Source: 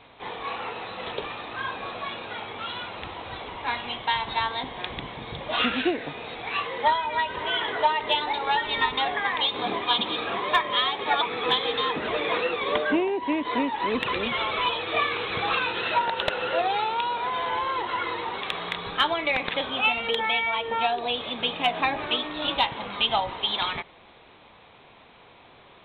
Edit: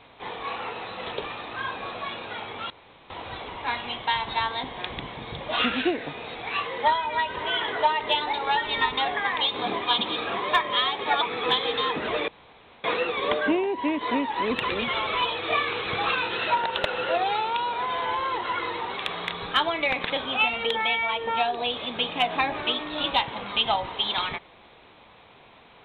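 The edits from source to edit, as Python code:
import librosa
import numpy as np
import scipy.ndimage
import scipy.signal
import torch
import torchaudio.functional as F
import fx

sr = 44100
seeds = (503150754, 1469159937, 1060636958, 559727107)

y = fx.edit(x, sr, fx.room_tone_fill(start_s=2.7, length_s=0.4),
    fx.insert_room_tone(at_s=12.28, length_s=0.56), tone=tone)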